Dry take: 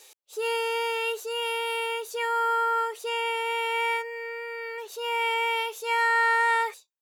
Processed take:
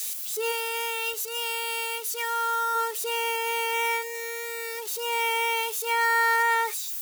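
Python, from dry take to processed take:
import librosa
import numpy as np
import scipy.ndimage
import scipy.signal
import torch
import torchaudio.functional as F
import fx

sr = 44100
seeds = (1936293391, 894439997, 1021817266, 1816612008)

y = x + 0.5 * 10.0 ** (-27.0 / 20.0) * np.diff(np.sign(x), prepend=np.sign(x[:1]))
y = fx.highpass(y, sr, hz=810.0, slope=6, at=(0.51, 2.74), fade=0.02)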